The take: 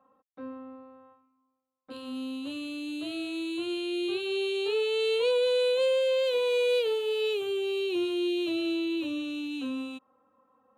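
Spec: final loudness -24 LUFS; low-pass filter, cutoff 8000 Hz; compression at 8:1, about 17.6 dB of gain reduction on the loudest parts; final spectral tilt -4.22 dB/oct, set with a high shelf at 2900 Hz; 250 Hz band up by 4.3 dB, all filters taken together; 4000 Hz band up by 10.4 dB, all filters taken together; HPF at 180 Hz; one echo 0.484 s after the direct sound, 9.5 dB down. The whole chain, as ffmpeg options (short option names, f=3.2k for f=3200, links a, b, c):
-af "highpass=180,lowpass=8k,equalizer=f=250:t=o:g=7,highshelf=f=2.9k:g=5.5,equalizer=f=4k:t=o:g=9,acompressor=threshold=-39dB:ratio=8,aecho=1:1:484:0.335,volume=15.5dB"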